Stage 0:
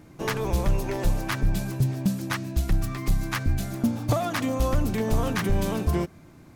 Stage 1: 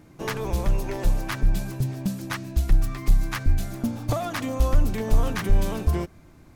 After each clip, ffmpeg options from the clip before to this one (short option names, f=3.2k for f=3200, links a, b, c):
-af "asubboost=boost=3:cutoff=74,volume=-1.5dB"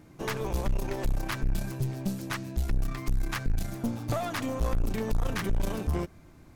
-af "aeval=exprs='(tanh(14.1*val(0)+0.5)-tanh(0.5))/14.1':c=same"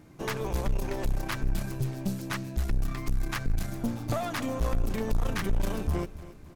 -af "aecho=1:1:276|552|828|1104:0.158|0.0713|0.0321|0.0144"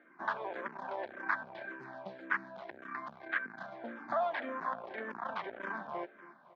-filter_complex "[0:a]highpass=f=290:w=0.5412,highpass=f=290:w=1.3066,equalizer=f=300:t=q:w=4:g=-10,equalizer=f=440:t=q:w=4:g=-9,equalizer=f=670:t=q:w=4:g=3,equalizer=f=990:t=q:w=4:g=5,equalizer=f=1.6k:t=q:w=4:g=9,equalizer=f=2.7k:t=q:w=4:g=-10,lowpass=f=2.9k:w=0.5412,lowpass=f=2.9k:w=1.3066,asplit=2[a][b];[b]afreqshift=-1.8[c];[a][c]amix=inputs=2:normalize=1"